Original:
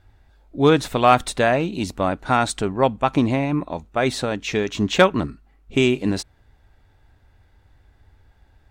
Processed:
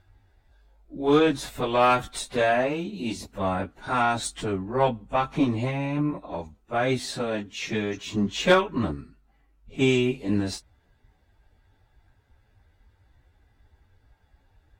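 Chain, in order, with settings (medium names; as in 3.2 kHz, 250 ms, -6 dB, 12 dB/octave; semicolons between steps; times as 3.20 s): plain phase-vocoder stretch 1.7×; Chebyshev shaper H 6 -27 dB, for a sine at -1.5 dBFS; trim -2.5 dB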